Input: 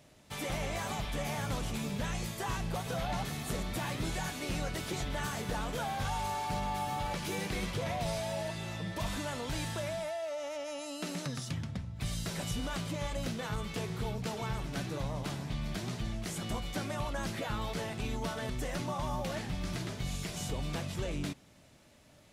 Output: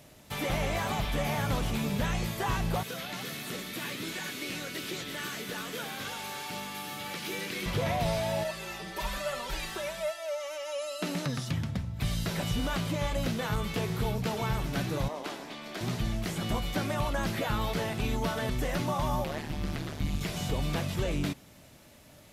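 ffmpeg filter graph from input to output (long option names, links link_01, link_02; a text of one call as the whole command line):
ffmpeg -i in.wav -filter_complex "[0:a]asettb=1/sr,asplit=3[link_01][link_02][link_03];[link_01]atrim=end=2.834[link_04];[link_02]atrim=start=2.83:end=7.66,asetpts=PTS-STARTPTS,afade=type=in:duration=0.004:curve=qsin,afade=type=out:start_time=4.826:duration=0.004:curve=qsin,highpass=300,equalizer=frequency=780:width_type=o:width=1.2:gain=-14.5,aecho=1:1:339:0.398,atrim=end_sample=213003[link_05];[link_03]atrim=start=7.656[link_06];[link_04][link_05]acrossfade=duration=0.004:curve1=hsin:curve2=qsin[link_07];[link_07][link_06]acrossfade=duration=0.004:curve1=qsin:curve2=hsin,asettb=1/sr,asplit=3[link_08][link_09][link_10];[link_08]atrim=end=8.444[link_11];[link_09]atrim=start=8.44:end=11.02,asetpts=PTS-STARTPTS,afade=type=in:duration=0.004:curve=qsin,afade=type=out:start_time=2.576:duration=0.004:curve=qsin,equalizer=frequency=120:width=0.58:gain=-11,aecho=1:1:5.2:0.98,atrim=end_sample=113778,flanger=delay=1.5:depth=1.1:regen=33:speed=1.2:shape=sinusoidal[link_12];[link_10]atrim=start=11.016[link_13];[link_11][link_12]acrossfade=duration=0.004:curve1=hsin:curve2=qsin[link_14];[link_14][link_13]acrossfade=duration=0.004:curve1=qsin:curve2=hsin,asettb=1/sr,asplit=3[link_15][link_16][link_17];[link_15]atrim=end=15.084[link_18];[link_16]atrim=start=15.08:end=15.81,asetpts=PTS-STARTPTS,afade=type=in:duration=0.004:curve=qsin,afade=type=out:start_time=0.726:duration=0.004:curve=qsin,highpass=frequency=280:width=0.5412,highpass=frequency=280:width=1.3066,highshelf=frequency=9000:gain=-12,tremolo=f=210:d=0.333[link_19];[link_17]atrim=start=15.806[link_20];[link_18][link_19]acrossfade=duration=0.004:curve1=hsin:curve2=qsin[link_21];[link_21][link_20]acrossfade=duration=0.004:curve1=qsin:curve2=hsin,asettb=1/sr,asplit=3[link_22][link_23][link_24];[link_22]atrim=end=19.244[link_25];[link_23]atrim=start=19.24:end=20.21,asetpts=PTS-STARTPTS,afade=type=in:duration=0.004:curve=qsin,afade=type=out:start_time=0.966:duration=0.004:curve=qsin,acrossover=split=4400[link_26][link_27];[link_27]acompressor=threshold=-54dB:ratio=4:attack=1:release=60[link_28];[link_26][link_28]amix=inputs=2:normalize=0,asubboost=boost=4.5:cutoff=130,tremolo=f=150:d=0.919[link_29];[link_24]atrim=start=20.206[link_30];[link_25][link_29]acrossfade=duration=0.004:curve1=hsin:curve2=qsin[link_31];[link_31][link_30]acrossfade=duration=0.004:curve1=qsin:curve2=hsin,acrossover=split=4800[link_32][link_33];[link_33]acompressor=threshold=-53dB:ratio=4:attack=1:release=60[link_34];[link_32][link_34]amix=inputs=2:normalize=0,equalizer=frequency=13000:width=1.9:gain=10.5,volume=5.5dB" out.wav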